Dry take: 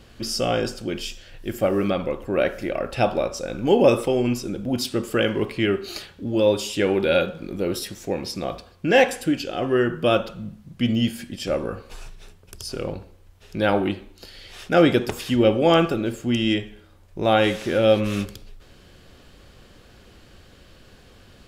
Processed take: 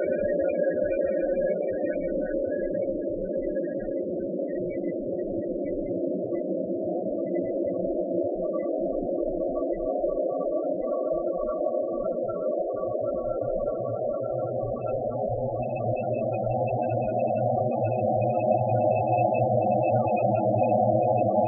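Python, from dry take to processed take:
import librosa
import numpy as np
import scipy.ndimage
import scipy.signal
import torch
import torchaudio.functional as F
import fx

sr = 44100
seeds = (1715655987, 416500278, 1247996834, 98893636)

y = fx.dynamic_eq(x, sr, hz=5900.0, q=4.5, threshold_db=-54.0, ratio=4.0, max_db=5)
y = fx.paulstretch(y, sr, seeds[0], factor=40.0, window_s=0.5, from_s=2.5)
y = fx.spec_topn(y, sr, count=16)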